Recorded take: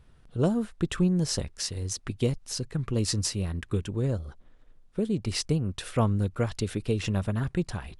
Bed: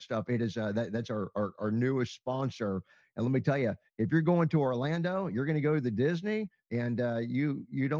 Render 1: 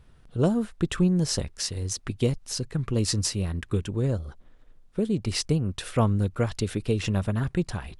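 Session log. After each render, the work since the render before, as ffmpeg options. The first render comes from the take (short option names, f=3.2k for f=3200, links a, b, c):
-af "volume=2dB"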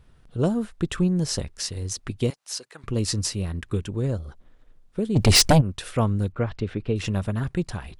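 -filter_complex "[0:a]asettb=1/sr,asplit=3[a][b][c];[a]atrim=end=2.304[d];[b]atrim=start=2.3:end=2.84,asetpts=PTS-STARTPTS,afade=t=in:d=0.004:c=qsin,afade=t=out:st=0.536:d=0.004:c=qsin,highpass=680[e];[c]atrim=start=2.836[f];[d][e]acrossfade=d=0.004:c1=hsin:c2=qsin[g];[g][f]acrossfade=d=0.004:c1=qsin:c2=hsin,asplit=3[h][i][j];[h]afade=t=out:st=5.15:d=0.02[k];[i]aeval=exprs='0.299*sin(PI/2*3.98*val(0)/0.299)':c=same,afade=t=in:st=5.15:d=0.02,afade=t=out:st=5.6:d=0.02[l];[j]afade=t=in:st=5.6:d=0.02[m];[k][l][m]amix=inputs=3:normalize=0,asettb=1/sr,asplit=3[n][o][p];[n]atrim=end=6.324[q];[o]atrim=start=6.32:end=6.96,asetpts=PTS-STARTPTS,afade=t=in:d=0.004:c=qsin,afade=t=out:st=0.636:d=0.004:c=qsin,lowpass=2.6k[r];[p]atrim=start=6.956[s];[q][r]acrossfade=d=0.004:c1=hsin:c2=qsin[t];[t][s]acrossfade=d=0.004:c1=qsin:c2=hsin"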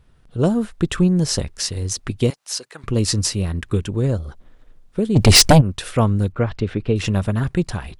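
-af "dynaudnorm=f=240:g=3:m=6dB"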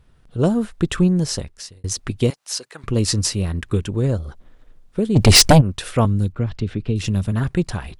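-filter_complex "[0:a]asettb=1/sr,asplit=3[a][b][c];[a]atrim=end=6.054[d];[b]atrim=start=6.05:end=7.32,asetpts=PTS-STARTPTS,afade=t=in:d=0.004:c=qsin,afade=t=out:st=1.266:d=0.004:c=qsin,acrossover=split=330|3000[e][f][g];[f]acompressor=threshold=-44dB:ratio=2:attack=3.2:release=140:knee=2.83:detection=peak[h];[e][h][g]amix=inputs=3:normalize=0[i];[c]atrim=start=7.316[j];[d][i]acrossfade=d=0.004:c1=hsin:c2=qsin[k];[k][j]acrossfade=d=0.004:c1=qsin:c2=hsin,asplit=2[l][m];[l]atrim=end=1.84,asetpts=PTS-STARTPTS,afade=t=out:st=1.09:d=0.75[n];[m]atrim=start=1.84,asetpts=PTS-STARTPTS,afade=t=in:d=0.004:c=hsin[o];[n][o]concat=n=2:v=0:a=1"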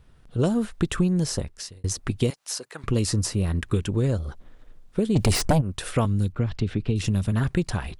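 -filter_complex "[0:a]acrossover=split=1700|7400[a][b][c];[a]acompressor=threshold=-19dB:ratio=4[d];[b]acompressor=threshold=-35dB:ratio=4[e];[c]acompressor=threshold=-32dB:ratio=4[f];[d][e][f]amix=inputs=3:normalize=0"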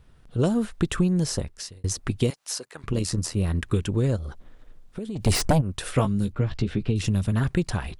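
-filter_complex "[0:a]asplit=3[a][b][c];[a]afade=t=out:st=2.64:d=0.02[d];[b]tremolo=f=82:d=0.621,afade=t=in:st=2.64:d=0.02,afade=t=out:st=3.35:d=0.02[e];[c]afade=t=in:st=3.35:d=0.02[f];[d][e][f]amix=inputs=3:normalize=0,asettb=1/sr,asplit=3[g][h][i];[g]atrim=end=4.164[j];[h]atrim=start=4.16:end=5.26,asetpts=PTS-STARTPTS,afade=t=in:d=0.004:c=qsin,afade=t=out:st=1.096:d=0.004:c=qsin,acompressor=threshold=-29dB:ratio=6:attack=3.2:release=140:knee=1:detection=peak[k];[i]atrim=start=5.256[l];[j][k]acrossfade=d=0.004:c1=hsin:c2=qsin[m];[m][l]acrossfade=d=0.004:c1=qsin:c2=hsin,asettb=1/sr,asplit=3[n][o][p];[n]atrim=end=5.964[q];[o]atrim=start=5.96:end=6.9,asetpts=PTS-STARTPTS,afade=t=in:d=0.004:c=qsin,afade=t=out:st=0.936:d=0.004:c=qsin,asplit=2[r][s];[s]adelay=15,volume=-6.5dB[t];[r][t]amix=inputs=2:normalize=0,atrim=end_sample=41454[u];[p]atrim=start=6.896[v];[q][u]acrossfade=d=0.004:c1=hsin:c2=qsin[w];[w][v]acrossfade=d=0.004:c1=qsin:c2=hsin"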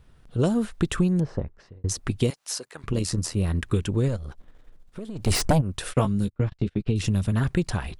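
-filter_complex "[0:a]asettb=1/sr,asplit=3[a][b][c];[a]atrim=end=1.204[d];[b]atrim=start=1.2:end=1.89,asetpts=PTS-STARTPTS,afade=t=in:d=0.004:c=qsin,afade=t=out:st=0.686:d=0.004:c=qsin,lowpass=1.3k[e];[c]atrim=start=1.886[f];[d][e]acrossfade=d=0.004:c1=hsin:c2=qsin[g];[g][f]acrossfade=d=0.004:c1=qsin:c2=hsin,asettb=1/sr,asplit=3[h][i][j];[h]atrim=end=4.084[k];[i]atrim=start=4.08:end=5.31,asetpts=PTS-STARTPTS,afade=t=in:d=0.004:c=qsin,afade=t=out:st=1.226:d=0.004:c=qsin,aeval=exprs='if(lt(val(0),0),0.447*val(0),val(0))':c=same[l];[j]atrim=start=5.306[m];[k][l]acrossfade=d=0.004:c1=hsin:c2=qsin[n];[n][m]acrossfade=d=0.004:c1=qsin:c2=hsin,asplit=3[o][p][q];[o]afade=t=out:st=5.92:d=0.02[r];[p]agate=range=-29dB:threshold=-28dB:ratio=16:release=100:detection=peak,afade=t=in:st=5.92:d=0.02,afade=t=out:st=6.86:d=0.02[s];[q]afade=t=in:st=6.86:d=0.02[t];[r][s][t]amix=inputs=3:normalize=0"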